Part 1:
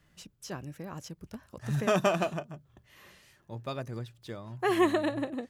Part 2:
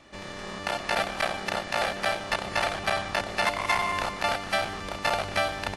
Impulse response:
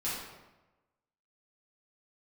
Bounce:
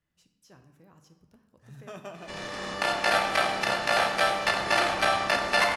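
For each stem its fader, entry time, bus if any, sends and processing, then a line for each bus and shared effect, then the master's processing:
-18.0 dB, 0.00 s, send -9 dB, none
-1.0 dB, 2.15 s, send -4 dB, bass shelf 190 Hz -9 dB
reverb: on, RT60 1.1 s, pre-delay 4 ms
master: none

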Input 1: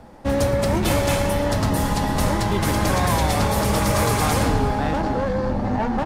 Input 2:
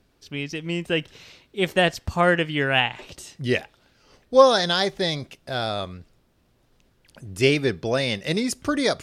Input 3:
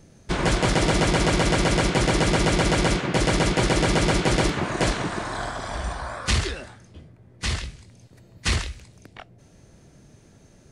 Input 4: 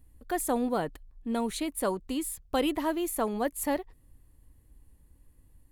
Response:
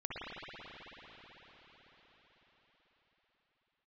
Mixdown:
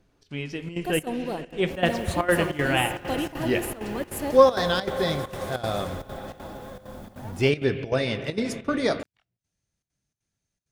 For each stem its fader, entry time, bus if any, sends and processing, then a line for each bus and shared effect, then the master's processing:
-19.0 dB, 1.45 s, no send, modulation noise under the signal 17 dB
+2.0 dB, 0.00 s, send -11 dB, treble shelf 3.1 kHz -9 dB; flange 0.38 Hz, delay 5.8 ms, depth 9.4 ms, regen -63%
-16.0 dB, 0.00 s, no send, amplifier tone stack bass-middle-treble 5-5-5; compression 2:1, threshold -48 dBFS, peak gain reduction 11 dB
-2.0 dB, 0.55 s, send -13.5 dB, LFO notch saw up 8.5 Hz 550–2400 Hz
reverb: on, RT60 5.6 s, pre-delay 54 ms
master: trance gate "xxx.xxxxx." 197 bpm -12 dB

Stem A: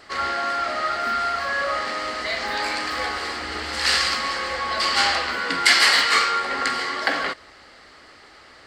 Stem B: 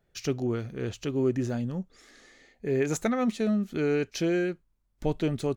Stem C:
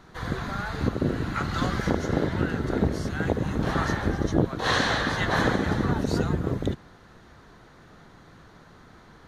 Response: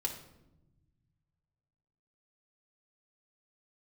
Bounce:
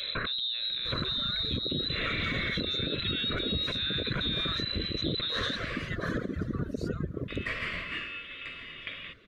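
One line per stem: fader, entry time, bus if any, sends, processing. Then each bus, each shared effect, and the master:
-13.0 dB, 1.80 s, muted 5.89–7.28 s, bus A, send -17 dB, upward compressor, threshold -23 dBFS; companded quantiser 6-bit
+2.0 dB, 0.00 s, bus A, no send, level flattener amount 100%
-4.0 dB, 0.70 s, no bus, no send, reverb removal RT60 1.9 s
bus A: 0.0 dB, frequency inversion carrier 4 kHz; peak limiter -18.5 dBFS, peak gain reduction 11.5 dB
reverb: on, RT60 0.95 s, pre-delay 3 ms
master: Butterworth band-stop 840 Hz, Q 1.6; treble shelf 2.3 kHz -8.5 dB; peak limiter -21 dBFS, peak gain reduction 8 dB

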